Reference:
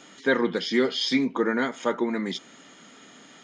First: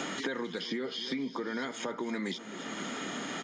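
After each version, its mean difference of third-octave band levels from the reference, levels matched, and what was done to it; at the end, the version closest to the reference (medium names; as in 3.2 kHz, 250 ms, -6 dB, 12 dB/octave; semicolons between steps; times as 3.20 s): 9.5 dB: compression, threshold -30 dBFS, peak gain reduction 13 dB; peak limiter -25.5 dBFS, peak gain reduction 7.5 dB; on a send: feedback delay 262 ms, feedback 55%, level -18.5 dB; on the sum: three bands compressed up and down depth 100%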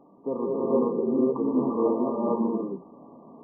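12.5 dB: block-companded coder 5-bit; in parallel at +1 dB: compression, threshold -33 dBFS, peak gain reduction 15.5 dB; on the sum: brick-wall FIR low-pass 1.2 kHz; gated-style reverb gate 480 ms rising, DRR -7.5 dB; trim -8.5 dB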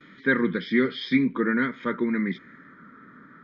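6.0 dB: gate with hold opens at -42 dBFS; tone controls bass +8 dB, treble -10 dB; static phaser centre 2.8 kHz, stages 6; low-pass sweep 2.8 kHz -> 1.4 kHz, 2.07–2.81 s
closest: third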